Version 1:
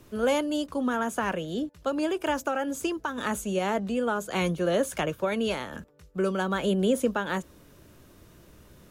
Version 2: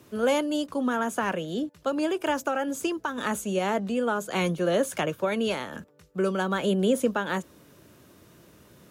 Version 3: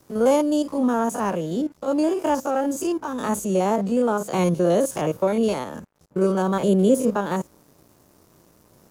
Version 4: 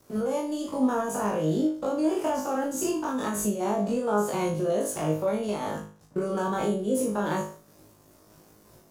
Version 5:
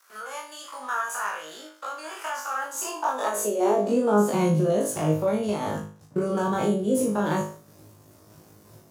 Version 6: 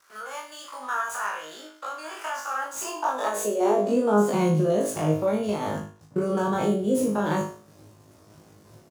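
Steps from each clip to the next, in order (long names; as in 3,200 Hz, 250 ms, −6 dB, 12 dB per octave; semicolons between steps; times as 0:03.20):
high-pass filter 110 Hz 12 dB per octave; level +1 dB
spectrum averaged block by block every 50 ms; flat-topped bell 2,300 Hz −9 dB; dead-zone distortion −57 dBFS; level +7 dB
brickwall limiter −19 dBFS, peak gain reduction 11.5 dB; flutter between parallel walls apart 3.3 metres, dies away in 0.41 s; amplitude modulation by smooth noise, depth 55%
high-pass filter sweep 1,400 Hz → 94 Hz, 0:02.49–0:05.03; level +2 dB
running median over 3 samples; slap from a distant wall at 17 metres, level −16 dB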